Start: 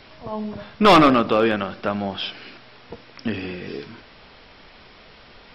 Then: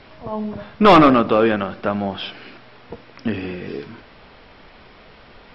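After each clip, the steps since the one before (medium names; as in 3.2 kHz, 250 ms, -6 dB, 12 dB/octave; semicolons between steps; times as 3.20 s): low-pass 2.3 kHz 6 dB/octave; trim +3 dB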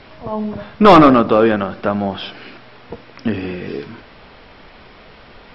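dynamic bell 2.6 kHz, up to -4 dB, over -36 dBFS, Q 1.2; trim +3.5 dB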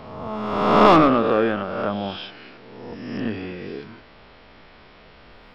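reverse spectral sustain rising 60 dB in 1.37 s; trim -9 dB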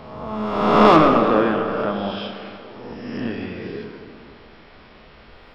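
plate-style reverb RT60 2.7 s, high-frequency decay 0.6×, DRR 4.5 dB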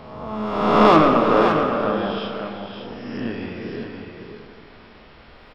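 delay 558 ms -7 dB; trim -1 dB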